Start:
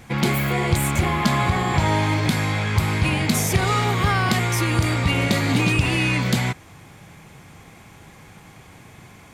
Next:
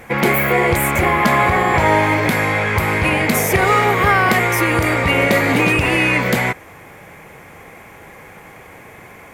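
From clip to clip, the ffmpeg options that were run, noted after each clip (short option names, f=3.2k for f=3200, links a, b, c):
-af "equalizer=f=125:t=o:w=1:g=-4,equalizer=f=500:t=o:w=1:g=10,equalizer=f=1k:t=o:w=1:g=3,equalizer=f=2k:t=o:w=1:g=9,equalizer=f=4k:t=o:w=1:g=-6,equalizer=f=8k:t=o:w=1:g=-4,equalizer=f=16k:t=o:w=1:g=10,volume=1.5dB"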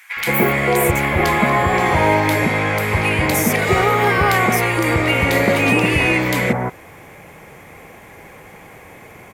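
-filter_complex "[0:a]acrossover=split=1400[a][b];[a]adelay=170[c];[c][b]amix=inputs=2:normalize=0"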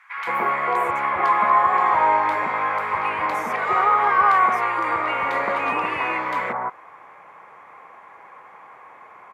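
-af "bandpass=f=1.1k:t=q:w=3.6:csg=0,volume=5.5dB"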